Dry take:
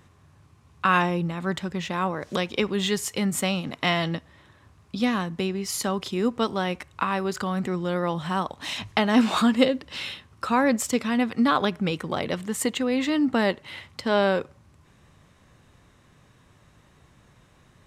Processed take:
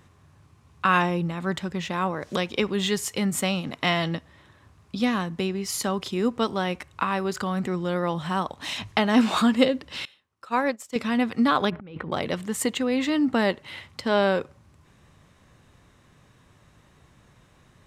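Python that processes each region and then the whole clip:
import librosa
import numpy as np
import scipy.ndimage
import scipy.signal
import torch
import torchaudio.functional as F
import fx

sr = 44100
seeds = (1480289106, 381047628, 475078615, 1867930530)

y = fx.chain(x, sr, fx.bass_treble(bass_db=-9, treble_db=0),
    fx.upward_expand(threshold_db=-33.0, expansion=2.5), at=(10.05, 10.96))
y = fx.chain(y, sr, fx.over_compress(threshold_db=-36.0, ratio=-1.0),
    fx.air_absorb(metres=440.0), at=(11.7, 12.12))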